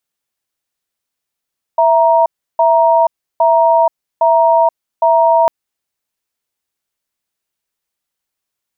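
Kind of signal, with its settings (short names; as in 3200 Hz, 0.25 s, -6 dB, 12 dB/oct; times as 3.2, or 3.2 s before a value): cadence 661 Hz, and 938 Hz, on 0.48 s, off 0.33 s, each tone -10 dBFS 3.70 s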